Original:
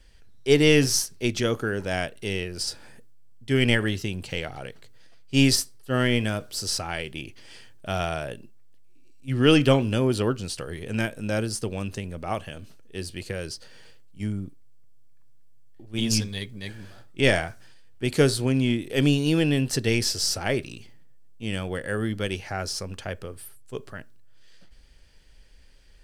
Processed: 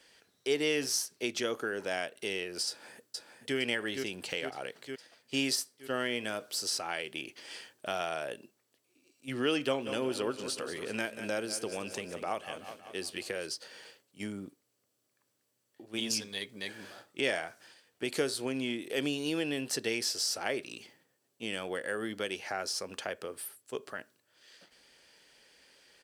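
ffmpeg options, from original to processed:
ffmpeg -i in.wav -filter_complex "[0:a]asplit=2[link_01][link_02];[link_02]afade=type=in:start_time=2.68:duration=0.01,afade=type=out:start_time=3.57:duration=0.01,aecho=0:1:460|920|1380|1840|2300|2760|3220|3680:0.473151|0.283891|0.170334|0.102201|0.0613204|0.0367922|0.0220753|0.0132452[link_03];[link_01][link_03]amix=inputs=2:normalize=0,asplit=3[link_04][link_05][link_06];[link_04]afade=type=out:start_time=9.85:duration=0.02[link_07];[link_05]aecho=1:1:185|370|555|740|925:0.211|0.112|0.0594|0.0315|0.0167,afade=type=in:start_time=9.85:duration=0.02,afade=type=out:start_time=13.46:duration=0.02[link_08];[link_06]afade=type=in:start_time=13.46:duration=0.02[link_09];[link_07][link_08][link_09]amix=inputs=3:normalize=0,highpass=340,acompressor=threshold=-39dB:ratio=2,volume=2.5dB" out.wav

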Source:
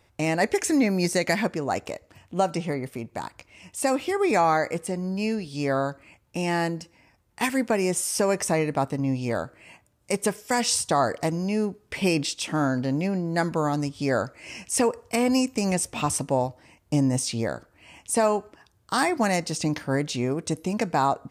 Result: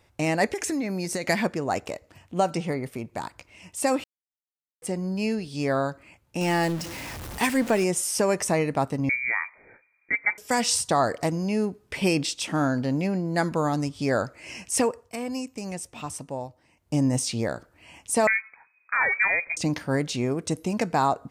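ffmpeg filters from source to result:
ffmpeg -i in.wav -filter_complex "[0:a]asettb=1/sr,asplit=3[link_01][link_02][link_03];[link_01]atrim=end=0.494[link_04];[link_02]atrim=start=0.49:end=1.26,asetpts=PTS-STARTPTS,afade=type=in:duration=0.004:curve=qsin,afade=type=out:start_time=0.766:duration=0.004:curve=qsin,acompressor=threshold=-24dB:ratio=10:attack=3.2:release=140:knee=1:detection=peak[link_05];[link_03]atrim=start=1.256[link_06];[link_04][link_05]acrossfade=duration=0.004:curve1=hsin:curve2=qsin[link_07];[link_07][link_06]acrossfade=duration=0.004:curve1=qsin:curve2=hsin,asettb=1/sr,asplit=3[link_08][link_09][link_10];[link_08]atrim=end=6.414[link_11];[link_09]atrim=start=6.41:end=7.84,asetpts=PTS-STARTPTS,afade=type=in:duration=0.004:curve=qsin,afade=type=out:start_time=1.426:duration=0.004:curve=qsin,aeval=exprs='val(0)+0.5*0.0282*sgn(val(0))':channel_layout=same[link_12];[link_10]atrim=start=7.836[link_13];[link_11][link_12]acrossfade=duration=0.004:curve1=hsin:curve2=qsin[link_14];[link_14][link_13]acrossfade=duration=0.004:curve1=qsin:curve2=hsin,asettb=1/sr,asplit=3[link_15][link_16][link_17];[link_15]atrim=end=9.094[link_18];[link_16]atrim=start=9.09:end=10.38,asetpts=PTS-STARTPTS,afade=type=in:duration=0.004:curve=qsin,afade=type=out:start_time=1.286:duration=0.004:curve=qsin,lowpass=frequency=2100:width_type=q:width=0.5098,lowpass=frequency=2100:width_type=q:width=0.6013,lowpass=frequency=2100:width_type=q:width=0.9,lowpass=frequency=2100:width_type=q:width=2.563,afreqshift=-2500[link_19];[link_17]atrim=start=10.376[link_20];[link_18][link_19]acrossfade=duration=0.004:curve1=hsin:curve2=qsin[link_21];[link_21][link_20]acrossfade=duration=0.004:curve1=qsin:curve2=hsin,asettb=1/sr,asplit=3[link_22][link_23][link_24];[link_22]atrim=end=18.274[link_25];[link_23]atrim=start=18.27:end=19.57,asetpts=PTS-STARTPTS,afade=type=in:duration=0.004:curve=qsin,afade=type=out:start_time=1.296:duration=0.004:curve=qsin,lowpass=frequency=2200:width_type=q:width=0.5098,lowpass=frequency=2200:width_type=q:width=0.6013,lowpass=frequency=2200:width_type=q:width=0.9,lowpass=frequency=2200:width_type=q:width=2.563,afreqshift=-2600[link_26];[link_24]atrim=start=19.566[link_27];[link_25][link_26]acrossfade=duration=0.004:curve1=hsin:curve2=qsin[link_28];[link_28][link_27]acrossfade=duration=0.004:curve1=qsin:curve2=hsin,asplit=5[link_29][link_30][link_31][link_32][link_33];[link_29]atrim=end=4.04,asetpts=PTS-STARTPTS,afade=type=out:start_time=4.036:duration=0.004:curve=hsin[link_34];[link_30]atrim=start=4.04:end=4.82,asetpts=PTS-STARTPTS,volume=0[link_35];[link_31]atrim=start=4.82:end=15.11,asetpts=PTS-STARTPTS,afade=type=in:duration=0.004:curve=hsin,afade=type=out:start_time=9.96:duration=0.33:silence=0.334965[link_36];[link_32]atrim=start=15.11:end=16.72,asetpts=PTS-STARTPTS,volume=-9.5dB[link_37];[link_33]atrim=start=16.72,asetpts=PTS-STARTPTS,afade=type=in:duration=0.33:silence=0.334965[link_38];[link_34][link_35][link_36][link_37][link_38]concat=n=5:v=0:a=1" out.wav

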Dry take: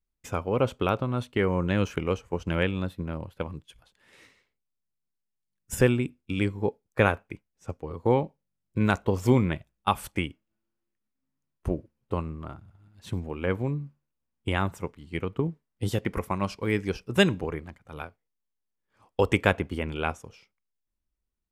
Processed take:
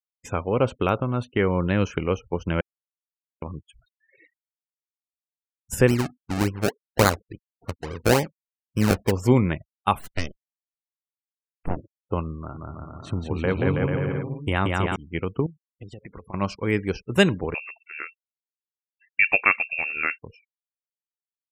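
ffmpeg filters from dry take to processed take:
ffmpeg -i in.wav -filter_complex "[0:a]asplit=3[link_01][link_02][link_03];[link_01]afade=type=out:start_time=5.87:duration=0.02[link_04];[link_02]acrusher=samples=31:mix=1:aa=0.000001:lfo=1:lforange=31:lforate=3.5,afade=type=in:start_time=5.87:duration=0.02,afade=type=out:start_time=9.1:duration=0.02[link_05];[link_03]afade=type=in:start_time=9.1:duration=0.02[link_06];[link_04][link_05][link_06]amix=inputs=3:normalize=0,asplit=3[link_07][link_08][link_09];[link_07]afade=type=out:start_time=9.98:duration=0.02[link_10];[link_08]aeval=exprs='abs(val(0))':channel_layout=same,afade=type=in:start_time=9.98:duration=0.02,afade=type=out:start_time=11.75:duration=0.02[link_11];[link_09]afade=type=in:start_time=11.75:duration=0.02[link_12];[link_10][link_11][link_12]amix=inputs=3:normalize=0,asettb=1/sr,asplit=3[link_13][link_14][link_15];[link_13]atrim=end=12.364[link_16];[link_14]atrim=start=12.36:end=14.96,asetpts=PTS-STARTPTS,afade=type=in:duration=0.004:curve=qsin,afade=type=out:start_time=2.596:duration=0.004:curve=qsin,aecho=1:1:180|324|439.2|531.4|605.1|664.1|711.3:0.794|0.631|0.501|0.398|0.316|0.251|0.2,atrim=end_sample=114660[link_17];[link_15]atrim=start=14.956[link_18];[link_16][link_17]acrossfade=duration=0.004:curve1=hsin:curve2=qsin[link_19];[link_19][link_18]acrossfade=duration=0.004:curve1=qsin:curve2=hsin,asettb=1/sr,asplit=3[link_20][link_21][link_22];[link_20]atrim=end=15.464[link_23];[link_21]atrim=start=15.46:end=16.34,asetpts=PTS-STARTPTS,afade=type=in:duration=0.004:curve=qsin,afade=type=out:start_time=0.876:duration=0.004:curve=qsin,acompressor=threshold=-39dB:ratio=16:attack=3.2:release=140:knee=1:detection=peak[link_24];[link_22]atrim=start=16.336[link_25];[link_23][link_24]acrossfade=duration=0.004:curve1=hsin:curve2=qsin[link_26];[link_26][link_25]acrossfade=duration=0.004:curve1=qsin:curve2=hsin,asettb=1/sr,asplit=3[link_27][link_28][link_29];[link_27]atrim=end=17.544[link_30];[link_28]atrim=start=17.54:end=20.21,asetpts=PTS-STARTPTS,afade=type=in:duration=0.004:curve=qsin,afade=type=out:start_time=2.666:duration=0.004:curve=qsin,lowpass=frequency=2400:width_type=q:width=0.5098,lowpass=frequency=2400:width_type=q:width=0.6013,lowpass=frequency=2400:width_type=q:width=0.9,lowpass=frequency=2400:width_type=q:width=2.563,afreqshift=-2800[link_31];[link_29]atrim=start=20.206[link_32];[link_30][link_31]acrossfade=duration=0.004:curve1=hsin:curve2=qsin[link_33];[link_33][link_32]acrossfade=duration=0.004:curve1=qsin:curve2=hsin,asplit=3[link_34][link_35][link_36];[link_34]atrim=end=2.61,asetpts=PTS-STARTPTS,afade=type=out:start_time=2.606:duration=0.004:curve=hsin[link_37];[link_35]atrim=start=2.61:end=3.42,asetpts=PTS-STARTPTS,volume=0[link_38];[link_36]atrim=start=3.42,asetpts=PTS-STARTPTS,afade=type=in:duration=0.004:curve=hsin[link_39];[link_37][link_38][link_39]concat=n=3:v=0:a=1,afftfilt=real='re*gte(hypot(re,im),0.00501)':imag='im*gte(hypot(re,im),0.00501)':win_size=1024:overlap=0.75,bandreject=frequency=3400:width=8.6,volume=3dB" out.wav

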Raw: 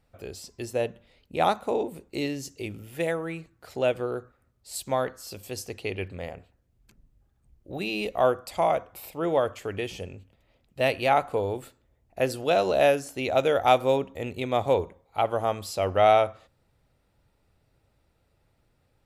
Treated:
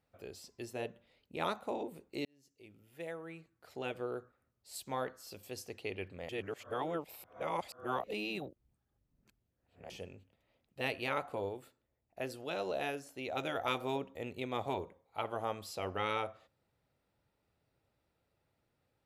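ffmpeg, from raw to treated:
ffmpeg -i in.wav -filter_complex "[0:a]asplit=6[link_01][link_02][link_03][link_04][link_05][link_06];[link_01]atrim=end=2.25,asetpts=PTS-STARTPTS,afade=type=out:start_time=2.246:duration=0.004:curve=hsin[link_07];[link_02]atrim=start=2.25:end=6.292,asetpts=PTS-STARTPTS,afade=type=in:duration=1.87[link_08];[link_03]atrim=start=6.288:end=9.902,asetpts=PTS-STARTPTS,areverse[link_09];[link_04]atrim=start=9.898:end=11.492[link_10];[link_05]atrim=start=11.488:end=13.372,asetpts=PTS-STARTPTS,volume=-3.5dB[link_11];[link_06]atrim=start=13.368[link_12];[link_07][link_08]concat=n=2:v=0:a=1[link_13];[link_13][link_09]acrossfade=duration=0.004:curve1=hsin:curve2=hsin[link_14];[link_14][link_10]acrossfade=duration=0.004:curve1=hsin:curve2=hsin[link_15];[link_15][link_11]acrossfade=duration=0.004:curve1=hsin:curve2=hsin[link_16];[link_16][link_12]acrossfade=duration=0.004:curve1=hsin:curve2=hsin,highpass=frequency=140:poles=1,afftfilt=real='re*lt(hypot(re,im),0.447)':imag='im*lt(hypot(re,im),0.447)':win_size=1024:overlap=0.75,equalizer=frequency=8200:width=0.97:gain=-3.5,volume=-8dB" out.wav

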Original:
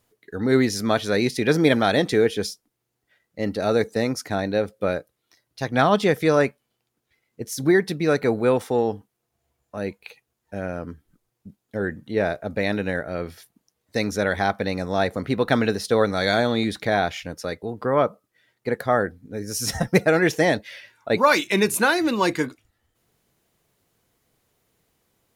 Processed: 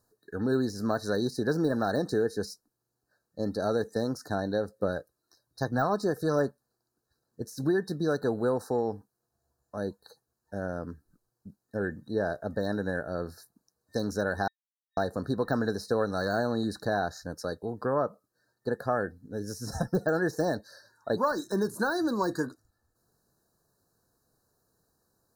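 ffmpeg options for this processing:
ffmpeg -i in.wav -filter_complex "[0:a]asettb=1/sr,asplit=3[link_01][link_02][link_03];[link_01]atrim=end=4.794[link_04];[link_02]atrim=start=4.79:end=7.42,asetpts=PTS-STARTPTS,afade=type=in:duration=0.004:curve=qsin,afade=type=out:start_time=2.626:duration=0.004:curve=qsin,aphaser=in_gain=1:out_gain=1:delay=3.2:decay=0.31:speed=1.2:type=sinusoidal[link_05];[link_03]atrim=start=7.416[link_06];[link_04][link_05]acrossfade=duration=0.004:curve1=hsin:curve2=qsin[link_07];[link_07][link_06]acrossfade=duration=0.004:curve1=qsin:curve2=hsin,asplit=3[link_08][link_09][link_10];[link_08]atrim=end=14.48,asetpts=PTS-STARTPTS,afade=type=out:start_time=14.476:duration=0.004:curve=hsin[link_11];[link_09]atrim=start=14.48:end=14.97,asetpts=PTS-STARTPTS,volume=0[link_12];[link_10]atrim=start=14.97,asetpts=PTS-STARTPTS,afade=type=in:duration=0.004:curve=hsin[link_13];[link_11][link_12][link_13]concat=n=3:v=0:a=1,deesser=0.7,afftfilt=real='re*(1-between(b*sr/4096,1800,3800))':imag='im*(1-between(b*sr/4096,1800,3800))':win_size=4096:overlap=0.75,acompressor=threshold=-22dB:ratio=2,volume=-4dB" out.wav

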